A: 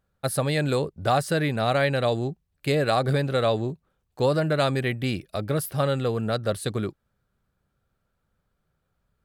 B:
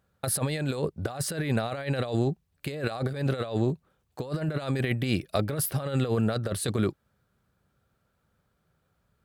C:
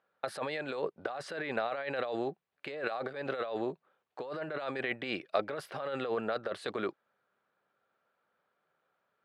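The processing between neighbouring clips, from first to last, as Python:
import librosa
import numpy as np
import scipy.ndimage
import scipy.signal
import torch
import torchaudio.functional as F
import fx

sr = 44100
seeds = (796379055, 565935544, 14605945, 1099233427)

y1 = scipy.signal.sosfilt(scipy.signal.butter(2, 60.0, 'highpass', fs=sr, output='sos'), x)
y1 = fx.over_compress(y1, sr, threshold_db=-27.0, ratio=-0.5)
y2 = fx.bandpass_edges(y1, sr, low_hz=500.0, high_hz=2700.0)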